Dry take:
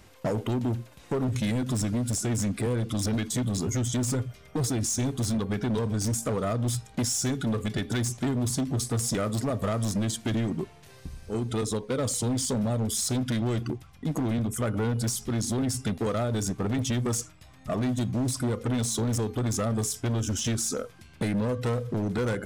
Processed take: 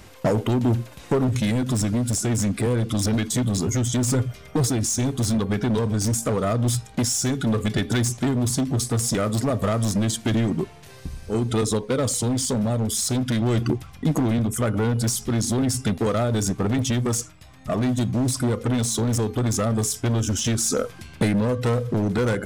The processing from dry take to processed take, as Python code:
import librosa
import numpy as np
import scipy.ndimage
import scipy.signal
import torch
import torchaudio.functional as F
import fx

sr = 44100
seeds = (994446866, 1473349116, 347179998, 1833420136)

y = fx.rider(x, sr, range_db=10, speed_s=0.5)
y = y * 10.0 ** (5.5 / 20.0)